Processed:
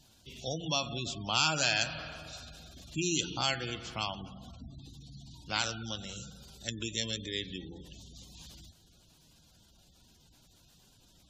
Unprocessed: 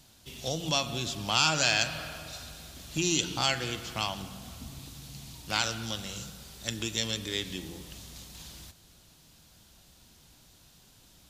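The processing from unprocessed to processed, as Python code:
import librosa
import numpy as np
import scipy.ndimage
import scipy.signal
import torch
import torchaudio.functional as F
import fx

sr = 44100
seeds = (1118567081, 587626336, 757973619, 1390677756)

y = fx.spec_gate(x, sr, threshold_db=-20, keep='strong')
y = F.gain(torch.from_numpy(y), -3.0).numpy()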